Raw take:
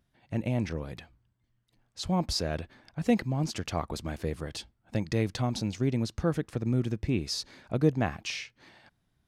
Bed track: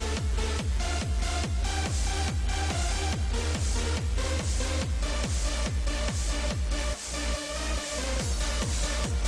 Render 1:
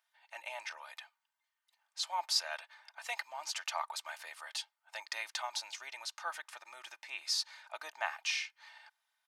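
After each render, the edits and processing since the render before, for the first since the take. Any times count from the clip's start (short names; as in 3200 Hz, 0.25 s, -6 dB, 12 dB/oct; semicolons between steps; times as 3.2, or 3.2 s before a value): elliptic high-pass 800 Hz, stop band 80 dB; comb 3.3 ms, depth 58%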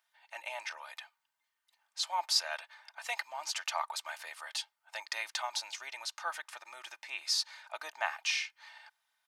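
gain +2.5 dB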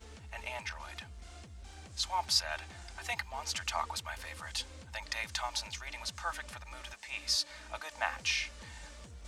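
add bed track -21.5 dB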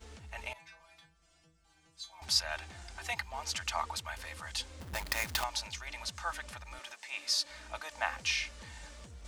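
0.53–2.22 metallic resonator 160 Hz, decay 0.39 s, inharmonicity 0.002; 4.8–5.44 half-waves squared off; 6.79–7.45 HPF 300 Hz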